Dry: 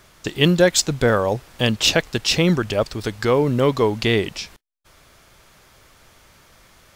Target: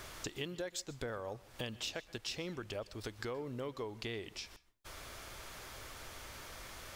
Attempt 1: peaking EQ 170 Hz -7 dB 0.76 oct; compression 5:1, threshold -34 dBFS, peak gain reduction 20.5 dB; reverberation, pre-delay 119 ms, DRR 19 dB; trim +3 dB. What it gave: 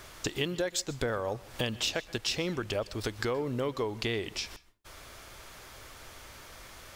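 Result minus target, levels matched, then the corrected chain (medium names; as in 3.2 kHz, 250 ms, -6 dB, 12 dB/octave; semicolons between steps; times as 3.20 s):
compression: peak gain reduction -9.5 dB
peaking EQ 170 Hz -7 dB 0.76 oct; compression 5:1, threshold -46 dBFS, peak gain reduction 30 dB; reverberation, pre-delay 119 ms, DRR 19 dB; trim +3 dB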